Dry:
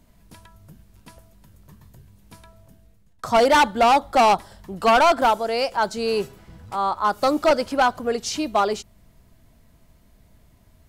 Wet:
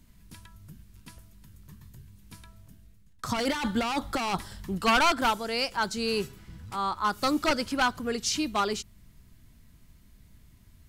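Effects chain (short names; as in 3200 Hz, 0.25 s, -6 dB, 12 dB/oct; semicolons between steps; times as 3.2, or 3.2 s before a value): bell 640 Hz -13 dB 1.3 oct; 3.29–4.78 negative-ratio compressor -28 dBFS, ratio -1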